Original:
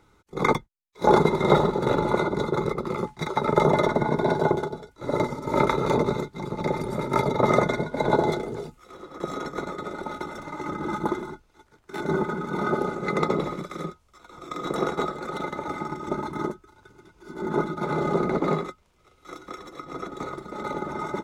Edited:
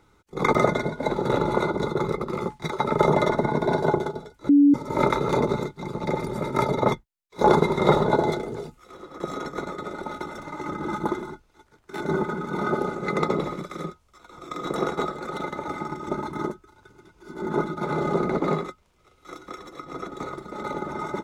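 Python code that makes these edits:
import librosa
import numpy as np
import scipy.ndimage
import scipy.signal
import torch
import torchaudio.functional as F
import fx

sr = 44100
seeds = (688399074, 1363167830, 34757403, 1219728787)

y = fx.edit(x, sr, fx.swap(start_s=0.55, length_s=1.14, other_s=7.49, other_length_s=0.57),
    fx.bleep(start_s=5.06, length_s=0.25, hz=286.0, db=-11.5), tone=tone)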